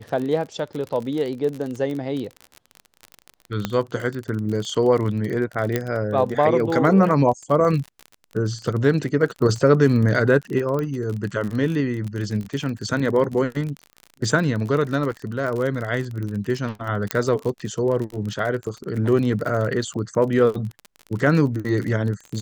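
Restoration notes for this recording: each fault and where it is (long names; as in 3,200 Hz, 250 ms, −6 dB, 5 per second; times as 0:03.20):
surface crackle 38 per second −27 dBFS
0:03.65: click −9 dBFS
0:05.76: click −9 dBFS
0:10.79: click −15 dBFS
0:17.11: click −5 dBFS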